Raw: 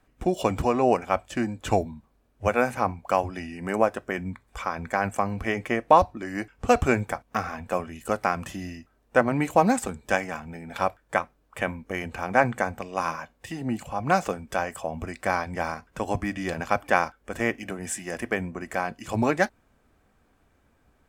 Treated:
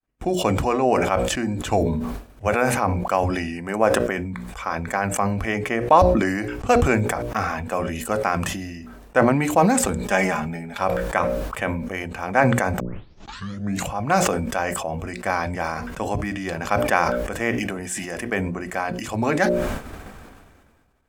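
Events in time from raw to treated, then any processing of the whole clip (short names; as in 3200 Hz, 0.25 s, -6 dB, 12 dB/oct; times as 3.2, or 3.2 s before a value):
10.02–10.78 comb 4.9 ms
12.8 tape start 1.07 s
whole clip: notches 60/120/180/240/300/360/420/480/540/600 Hz; expander -53 dBFS; sustainer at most 32 dB/s; gain +1.5 dB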